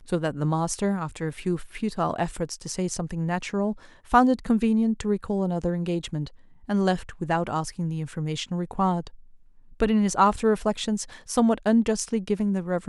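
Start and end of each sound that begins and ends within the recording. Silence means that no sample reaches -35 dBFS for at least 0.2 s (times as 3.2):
4.11–6.27
6.69–9.07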